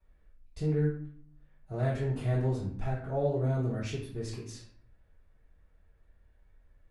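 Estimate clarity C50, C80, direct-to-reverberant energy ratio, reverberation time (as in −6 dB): 3.5 dB, 7.5 dB, −11.5 dB, 0.55 s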